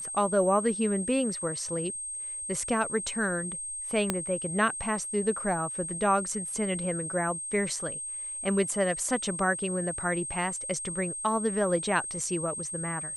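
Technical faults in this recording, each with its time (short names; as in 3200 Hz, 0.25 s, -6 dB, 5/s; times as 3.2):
tone 8400 Hz -34 dBFS
4.1 pop -11 dBFS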